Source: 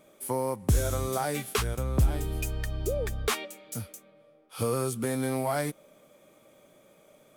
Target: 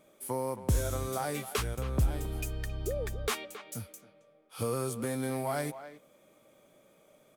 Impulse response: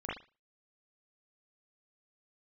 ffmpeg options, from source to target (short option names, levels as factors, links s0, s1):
-filter_complex "[0:a]asplit=2[s0][s1];[s1]adelay=270,highpass=300,lowpass=3400,asoftclip=type=hard:threshold=0.0794,volume=0.251[s2];[s0][s2]amix=inputs=2:normalize=0,volume=0.631"